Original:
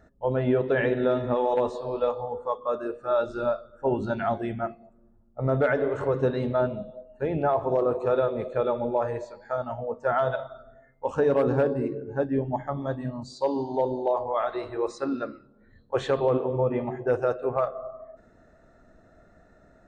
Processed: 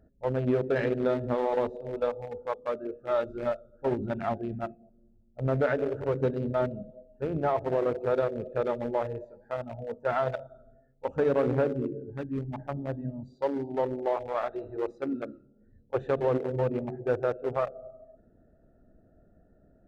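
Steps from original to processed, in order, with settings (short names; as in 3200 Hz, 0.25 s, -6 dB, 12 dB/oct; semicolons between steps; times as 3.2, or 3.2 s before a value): Wiener smoothing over 41 samples; 12.1–12.58 bell 590 Hz -11 dB 1.5 oct; gain -2 dB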